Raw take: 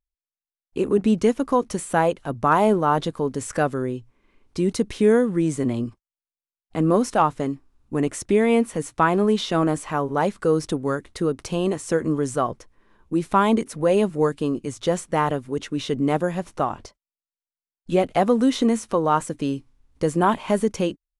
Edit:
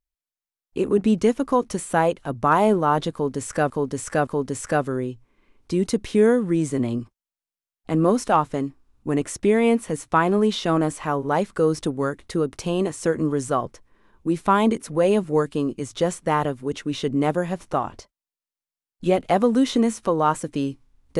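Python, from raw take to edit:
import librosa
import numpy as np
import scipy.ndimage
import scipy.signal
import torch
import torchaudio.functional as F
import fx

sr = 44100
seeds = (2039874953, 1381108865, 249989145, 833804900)

y = fx.edit(x, sr, fx.repeat(start_s=3.13, length_s=0.57, count=3), tone=tone)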